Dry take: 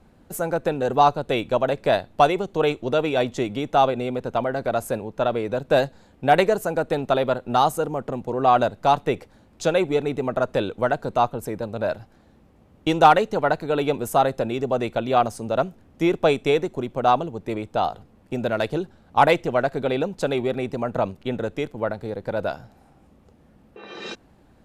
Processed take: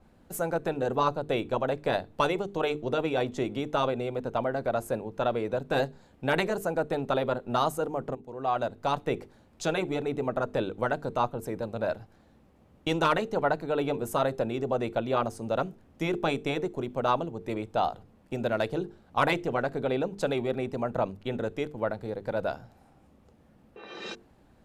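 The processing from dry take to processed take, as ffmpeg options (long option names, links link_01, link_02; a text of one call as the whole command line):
ffmpeg -i in.wav -filter_complex "[0:a]asplit=2[link_01][link_02];[link_01]atrim=end=8.15,asetpts=PTS-STARTPTS,afade=type=out:start_time=8.146:duration=0.004:curve=hsin:silence=0.16788[link_03];[link_02]atrim=start=8.15,asetpts=PTS-STARTPTS,afade=type=in:duration=0.99:silence=0.16788[link_04];[link_03][link_04]concat=n=2:v=0:a=1,bandreject=frequency=50:width_type=h:width=6,bandreject=frequency=100:width_type=h:width=6,bandreject=frequency=150:width_type=h:width=6,bandreject=frequency=200:width_type=h:width=6,bandreject=frequency=250:width_type=h:width=6,bandreject=frequency=300:width_type=h:width=6,bandreject=frequency=350:width_type=h:width=6,bandreject=frequency=400:width_type=h:width=6,bandreject=frequency=450:width_type=h:width=6,afftfilt=real='re*lt(hypot(re,im),1.12)':imag='im*lt(hypot(re,im),1.12)':win_size=1024:overlap=0.75,adynamicequalizer=threshold=0.0141:dfrequency=1700:dqfactor=0.7:tfrequency=1700:tqfactor=0.7:attack=5:release=100:ratio=0.375:range=2.5:mode=cutabove:tftype=highshelf,volume=-4dB" out.wav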